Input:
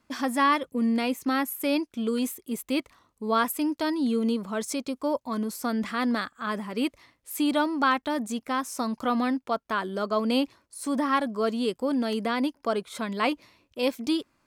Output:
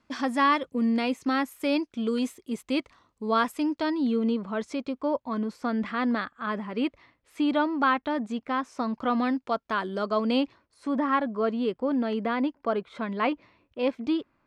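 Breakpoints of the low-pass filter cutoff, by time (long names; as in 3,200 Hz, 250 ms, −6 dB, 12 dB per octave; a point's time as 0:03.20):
0:03.38 5,800 Hz
0:04.33 3,000 Hz
0:08.98 3,000 Hz
0:09.43 5,700 Hz
0:10.00 5,700 Hz
0:10.94 2,400 Hz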